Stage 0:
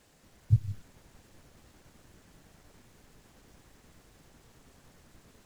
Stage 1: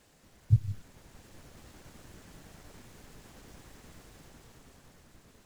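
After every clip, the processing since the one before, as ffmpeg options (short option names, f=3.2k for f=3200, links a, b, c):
-af "dynaudnorm=f=210:g=11:m=6dB"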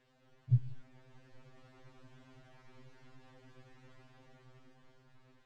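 -af "lowpass=3.4k,afftfilt=real='re*2.45*eq(mod(b,6),0)':imag='im*2.45*eq(mod(b,6),0)':win_size=2048:overlap=0.75,volume=-3.5dB"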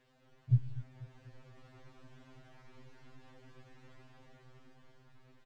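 -af "aecho=1:1:244|488|732|976|1220:0.158|0.0824|0.0429|0.0223|0.0116,volume=1dB"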